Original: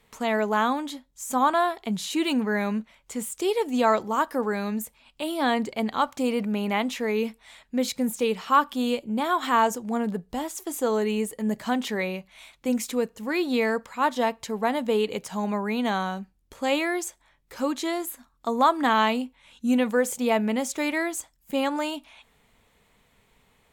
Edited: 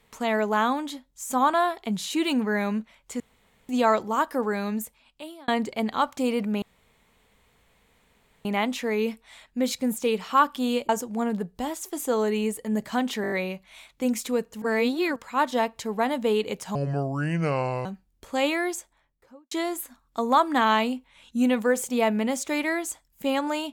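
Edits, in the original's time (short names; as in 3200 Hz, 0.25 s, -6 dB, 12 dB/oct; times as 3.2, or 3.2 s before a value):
3.2–3.69 room tone
4.8–5.48 fade out
6.62 insert room tone 1.83 s
9.06–9.63 cut
11.96 stutter 0.02 s, 6 plays
13.26–13.8 reverse
15.39–16.14 speed 68%
16.94–17.8 studio fade out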